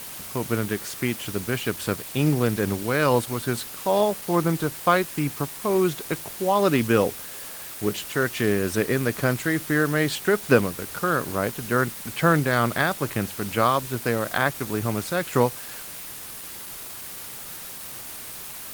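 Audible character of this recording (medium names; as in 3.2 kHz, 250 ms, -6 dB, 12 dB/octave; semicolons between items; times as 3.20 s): tremolo triangle 2.3 Hz, depth 35%; a quantiser's noise floor 6-bit, dither triangular; Opus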